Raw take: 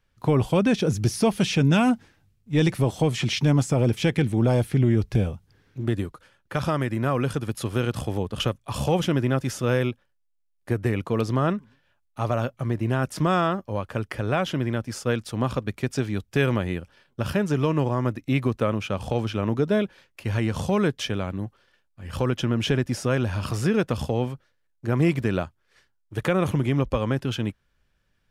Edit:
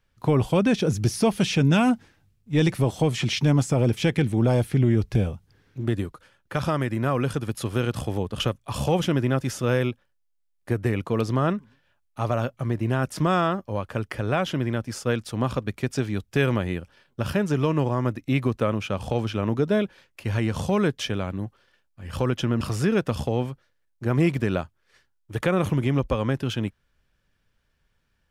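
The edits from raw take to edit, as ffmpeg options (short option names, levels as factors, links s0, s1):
-filter_complex "[0:a]asplit=2[s0][s1];[s0]atrim=end=22.612[s2];[s1]atrim=start=23.428[s3];[s2][s3]acrossfade=d=0.004:c1=hsin:c2=hsin"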